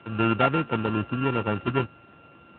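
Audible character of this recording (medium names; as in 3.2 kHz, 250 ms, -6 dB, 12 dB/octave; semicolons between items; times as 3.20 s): a buzz of ramps at a fixed pitch in blocks of 32 samples; AMR-NB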